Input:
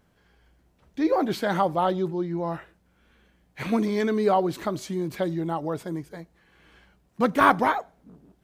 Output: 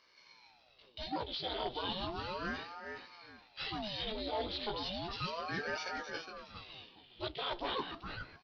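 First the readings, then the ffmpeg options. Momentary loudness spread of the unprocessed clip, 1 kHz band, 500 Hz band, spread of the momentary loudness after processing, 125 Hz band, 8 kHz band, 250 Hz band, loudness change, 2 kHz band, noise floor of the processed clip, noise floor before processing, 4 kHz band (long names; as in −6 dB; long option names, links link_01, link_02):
15 LU, −15.0 dB, −15.5 dB, 14 LU, −15.0 dB, −13.0 dB, −18.5 dB, −14.0 dB, −10.0 dB, −66 dBFS, −65 dBFS, +3.0 dB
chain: -filter_complex "[0:a]aecho=1:1:1.5:0.57,flanger=delay=15.5:depth=2.8:speed=0.66,highshelf=frequency=2400:width_type=q:width=3:gain=13,areverse,acompressor=threshold=-31dB:ratio=10,areverse,volume=29.5dB,asoftclip=hard,volume=-29.5dB,acrusher=bits=5:mode=log:mix=0:aa=0.000001,bass=frequency=250:gain=-8,treble=frequency=4000:gain=-7,asplit=2[link_01][link_02];[link_02]adelay=415,lowpass=frequency=4000:poles=1,volume=-6.5dB,asplit=2[link_03][link_04];[link_04]adelay=415,lowpass=frequency=4000:poles=1,volume=0.27,asplit=2[link_05][link_06];[link_06]adelay=415,lowpass=frequency=4000:poles=1,volume=0.27[link_07];[link_03][link_05][link_07]amix=inputs=3:normalize=0[link_08];[link_01][link_08]amix=inputs=2:normalize=0,aresample=11025,aresample=44100,aeval=exprs='val(0)*sin(2*PI*610*n/s+610*0.8/0.34*sin(2*PI*0.34*n/s))':channel_layout=same,volume=1.5dB"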